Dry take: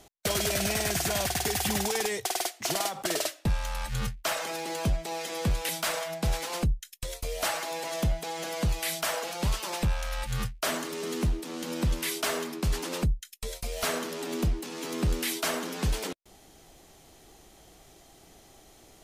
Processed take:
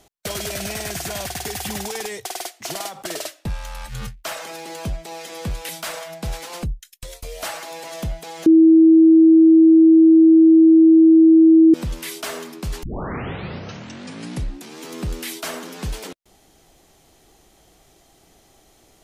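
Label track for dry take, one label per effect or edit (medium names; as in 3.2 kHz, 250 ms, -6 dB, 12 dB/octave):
8.460000	11.740000	bleep 323 Hz -7 dBFS
12.830000	12.830000	tape start 2.03 s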